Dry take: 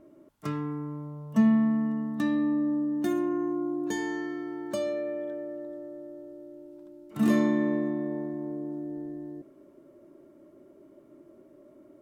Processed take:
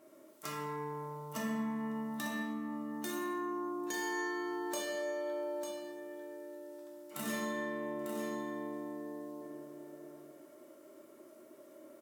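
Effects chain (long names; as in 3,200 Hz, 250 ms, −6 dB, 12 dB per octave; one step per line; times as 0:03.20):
high-pass filter 1,000 Hz 6 dB per octave
high-shelf EQ 4,400 Hz +10.5 dB
downward compressor, threshold −41 dBFS, peak gain reduction 12.5 dB
single-tap delay 898 ms −7.5 dB
dense smooth reverb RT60 1.3 s, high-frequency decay 0.55×, DRR −2 dB
level +1 dB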